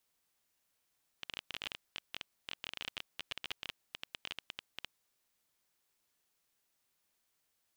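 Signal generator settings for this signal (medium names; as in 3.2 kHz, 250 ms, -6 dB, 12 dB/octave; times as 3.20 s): random clicks 17 per s -22.5 dBFS 3.76 s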